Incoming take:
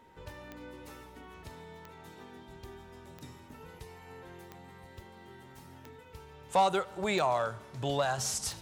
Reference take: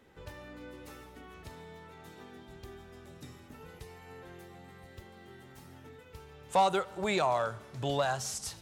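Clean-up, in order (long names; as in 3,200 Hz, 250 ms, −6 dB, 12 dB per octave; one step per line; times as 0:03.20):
click removal
notch filter 930 Hz, Q 30
level 0 dB, from 0:08.18 −4 dB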